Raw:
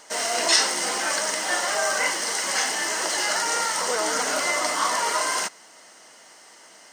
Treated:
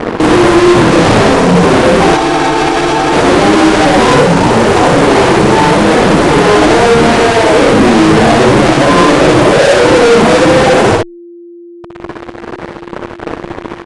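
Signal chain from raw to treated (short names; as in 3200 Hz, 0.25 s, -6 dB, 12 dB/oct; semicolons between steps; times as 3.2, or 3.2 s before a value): tracing distortion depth 0.48 ms; LPF 1100 Hz 12 dB/oct; reverb removal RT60 1.1 s; HPF 190 Hz 24 dB/oct; notch 490 Hz, Q 12; fuzz box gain 52 dB, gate -55 dBFS; whine 690 Hz -33 dBFS; doubler 31 ms -3.5 dB; speed mistake 15 ips tape played at 7.5 ips; spectral freeze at 2.18, 0.95 s; maximiser +9.5 dB; gain -1 dB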